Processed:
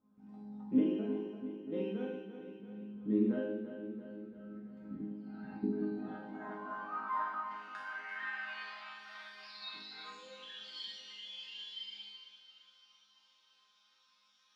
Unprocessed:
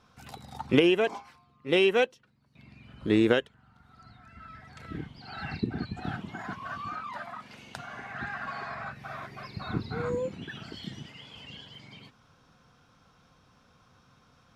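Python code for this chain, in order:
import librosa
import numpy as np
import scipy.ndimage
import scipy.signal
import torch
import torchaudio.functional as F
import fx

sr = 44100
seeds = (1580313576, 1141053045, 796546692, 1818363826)

p1 = fx.filter_sweep_bandpass(x, sr, from_hz=220.0, to_hz=3800.0, start_s=5.22, end_s=8.94, q=2.0)
p2 = fx.echo_feedback(p1, sr, ms=340, feedback_pct=56, wet_db=-12)
p3 = fx.rev_schroeder(p2, sr, rt60_s=0.59, comb_ms=32, drr_db=2.0)
p4 = fx.rider(p3, sr, range_db=3, speed_s=0.5)
p5 = p3 + F.gain(torch.from_numpy(p4), 2.0).numpy()
p6 = fx.resonator_bank(p5, sr, root=56, chord='major', decay_s=0.71)
y = F.gain(torch.from_numpy(p6), 13.5).numpy()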